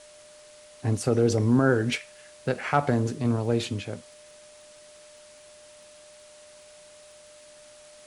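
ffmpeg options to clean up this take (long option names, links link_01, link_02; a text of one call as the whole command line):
ffmpeg -i in.wav -af "adeclick=threshold=4,bandreject=frequency=600:width=30,afwtdn=0.0028" out.wav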